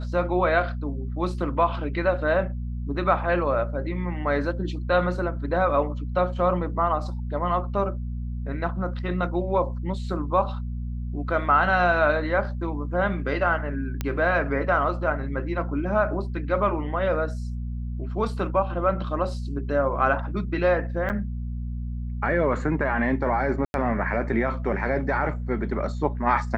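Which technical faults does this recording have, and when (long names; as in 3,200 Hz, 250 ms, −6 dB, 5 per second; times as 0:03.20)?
mains hum 60 Hz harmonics 4 −30 dBFS
0:14.01: click −13 dBFS
0:21.09–0:21.10: drop-out 8.8 ms
0:23.65–0:23.74: drop-out 91 ms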